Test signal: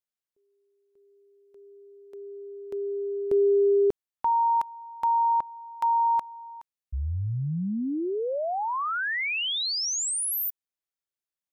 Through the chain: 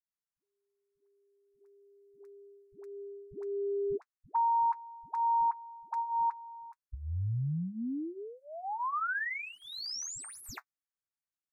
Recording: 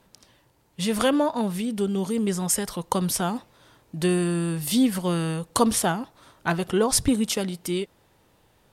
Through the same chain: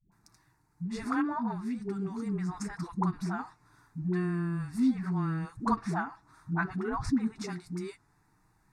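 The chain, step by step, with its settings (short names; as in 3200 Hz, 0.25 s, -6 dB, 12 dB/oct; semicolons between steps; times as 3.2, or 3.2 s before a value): median filter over 3 samples; fixed phaser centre 1300 Hz, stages 4; flange 0.34 Hz, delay 5.8 ms, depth 2 ms, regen -41%; dispersion highs, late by 0.118 s, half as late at 360 Hz; treble ducked by the level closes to 2700 Hz, closed at -28 dBFS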